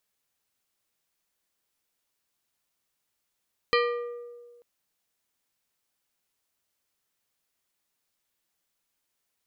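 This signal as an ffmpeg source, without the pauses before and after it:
ffmpeg -f lavfi -i "aevalsrc='0.0891*pow(10,-3*t/1.67)*sin(2*PI*479*t)+0.0708*pow(10,-3*t/0.879)*sin(2*PI*1197.5*t)+0.0562*pow(10,-3*t/0.633)*sin(2*PI*1916*t)+0.0447*pow(10,-3*t/0.541)*sin(2*PI*2395*t)+0.0355*pow(10,-3*t/0.45)*sin(2*PI*3113.5*t)+0.0282*pow(10,-3*t/0.373)*sin(2*PI*4071.5*t)+0.0224*pow(10,-3*t/0.359)*sin(2*PI*4311*t)+0.0178*pow(10,-3*t/0.333)*sin(2*PI*4790*t)':duration=0.89:sample_rate=44100" out.wav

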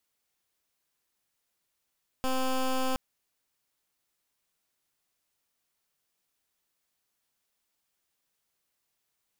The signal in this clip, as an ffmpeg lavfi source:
ffmpeg -f lavfi -i "aevalsrc='0.0422*(2*lt(mod(260*t,1),0.13)-1)':duration=0.72:sample_rate=44100" out.wav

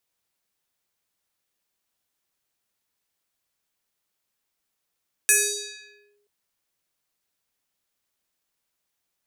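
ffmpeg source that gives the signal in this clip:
ffmpeg -f lavfi -i "aevalsrc='0.237*pow(10,-3*t/1.01)*sin(2*PI*411*t+5.4*clip(1-t/0.89,0,1)*sin(2*PI*5.13*411*t))':duration=0.98:sample_rate=44100" out.wav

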